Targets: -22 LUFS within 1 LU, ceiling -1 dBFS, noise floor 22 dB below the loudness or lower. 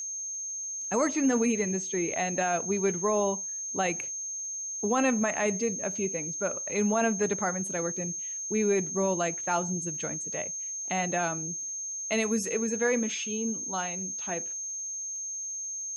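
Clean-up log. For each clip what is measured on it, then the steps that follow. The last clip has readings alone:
tick rate 38 per s; steady tone 6.4 kHz; tone level -33 dBFS; loudness -29.0 LUFS; peak level -16.0 dBFS; loudness target -22.0 LUFS
-> de-click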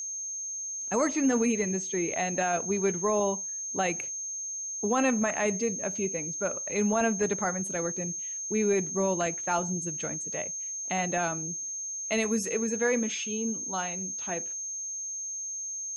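tick rate 0.13 per s; steady tone 6.4 kHz; tone level -33 dBFS
-> band-stop 6.4 kHz, Q 30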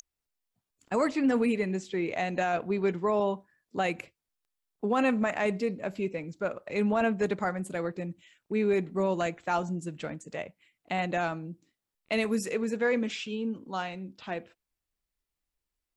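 steady tone not found; loudness -30.5 LUFS; peak level -17.0 dBFS; loudness target -22.0 LUFS
-> trim +8.5 dB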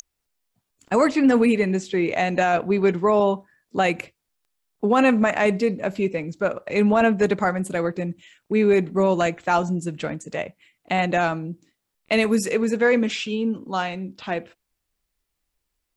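loudness -22.0 LUFS; peak level -8.5 dBFS; noise floor -79 dBFS

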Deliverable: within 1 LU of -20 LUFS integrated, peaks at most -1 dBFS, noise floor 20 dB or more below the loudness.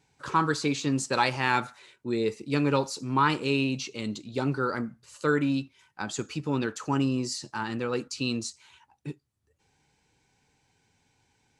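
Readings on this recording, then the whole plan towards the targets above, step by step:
loudness -28.5 LUFS; peak level -8.5 dBFS; loudness target -20.0 LUFS
-> trim +8.5 dB; peak limiter -1 dBFS

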